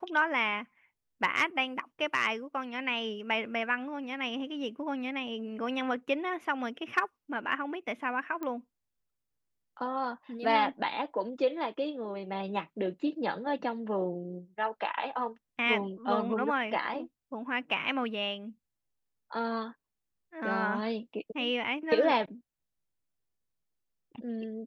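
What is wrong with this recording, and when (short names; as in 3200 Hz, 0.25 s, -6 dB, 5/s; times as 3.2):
8.43 pop -24 dBFS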